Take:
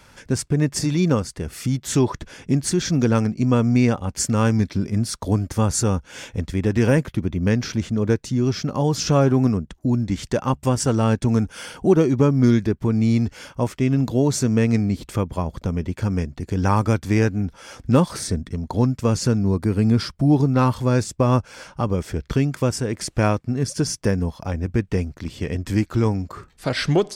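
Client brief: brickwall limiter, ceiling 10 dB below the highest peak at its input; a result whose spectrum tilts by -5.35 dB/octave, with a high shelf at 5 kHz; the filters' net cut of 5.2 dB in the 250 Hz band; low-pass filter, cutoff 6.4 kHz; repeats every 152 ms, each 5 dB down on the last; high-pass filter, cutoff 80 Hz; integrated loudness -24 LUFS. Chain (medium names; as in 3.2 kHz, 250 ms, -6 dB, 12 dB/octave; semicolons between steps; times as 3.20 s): high-pass 80 Hz; low-pass 6.4 kHz; peaking EQ 250 Hz -6.5 dB; treble shelf 5 kHz +5.5 dB; peak limiter -14.5 dBFS; feedback delay 152 ms, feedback 56%, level -5 dB; trim +0.5 dB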